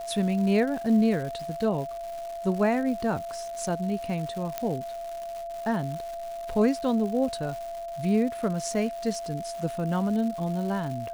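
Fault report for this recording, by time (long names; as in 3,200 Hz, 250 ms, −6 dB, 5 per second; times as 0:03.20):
surface crackle 320 per second −35 dBFS
whistle 680 Hz −33 dBFS
0:04.58: click −14 dBFS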